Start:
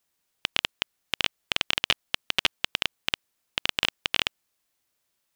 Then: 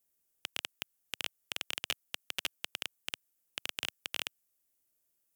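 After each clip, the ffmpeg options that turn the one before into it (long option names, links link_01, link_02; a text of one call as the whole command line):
ffmpeg -i in.wav -filter_complex "[0:a]equalizer=frequency=125:width_type=o:width=1:gain=-5,equalizer=frequency=1000:width_type=o:width=1:gain=-9,equalizer=frequency=2000:width_type=o:width=1:gain=-6,equalizer=frequency=4000:width_type=o:width=1:gain=-9,equalizer=frequency=16000:width_type=o:width=1:gain=6,acrossover=split=800[link_01][link_02];[link_01]alimiter=level_in=10dB:limit=-24dB:level=0:latency=1:release=459,volume=-10dB[link_03];[link_03][link_02]amix=inputs=2:normalize=0,volume=-3.5dB" out.wav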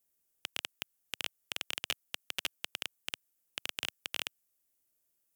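ffmpeg -i in.wav -af anull out.wav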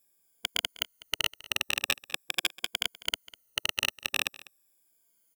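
ffmpeg -i in.wav -af "afftfilt=real='re*pow(10,15/40*sin(2*PI*(1.8*log(max(b,1)*sr/1024/100)/log(2)-(-0.43)*(pts-256)/sr)))':imag='im*pow(10,15/40*sin(2*PI*(1.8*log(max(b,1)*sr/1024/100)/log(2)-(-0.43)*(pts-256)/sr)))':win_size=1024:overlap=0.75,aecho=1:1:199:0.1,volume=5.5dB" out.wav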